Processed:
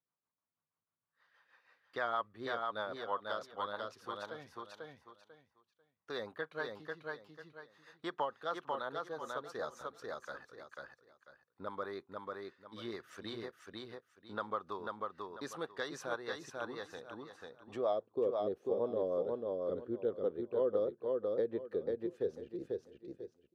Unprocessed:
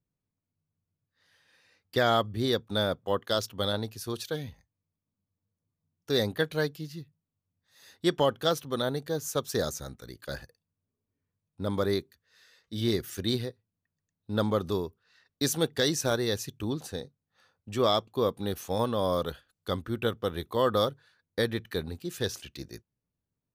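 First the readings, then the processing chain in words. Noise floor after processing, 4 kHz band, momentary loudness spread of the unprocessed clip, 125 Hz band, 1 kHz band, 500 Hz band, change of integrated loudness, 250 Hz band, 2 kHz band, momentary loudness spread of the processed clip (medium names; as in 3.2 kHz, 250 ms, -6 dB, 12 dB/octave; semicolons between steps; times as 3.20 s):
under -85 dBFS, -17.5 dB, 14 LU, -21.5 dB, -6.5 dB, -7.0 dB, -9.5 dB, -12.5 dB, -7.0 dB, 15 LU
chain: band-pass sweep 1.1 kHz -> 450 Hz, 17.47–18.16 s; rotary cabinet horn 6.3 Hz; feedback delay 493 ms, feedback 20%, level -4 dB; compression 1.5:1, threshold -56 dBFS, peak gain reduction 11 dB; trim +8 dB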